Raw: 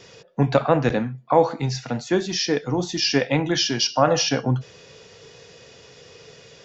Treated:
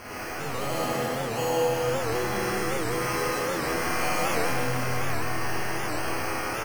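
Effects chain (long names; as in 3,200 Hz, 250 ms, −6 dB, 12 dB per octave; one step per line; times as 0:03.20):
spike at every zero crossing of −14 dBFS
notch filter 5,400 Hz
decimation without filtering 12×
resonators tuned to a chord E2 major, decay 0.27 s
single-tap delay 150 ms −5 dB
four-comb reverb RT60 3.9 s, combs from 27 ms, DRR −10 dB
wow of a warped record 78 rpm, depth 160 cents
level −8 dB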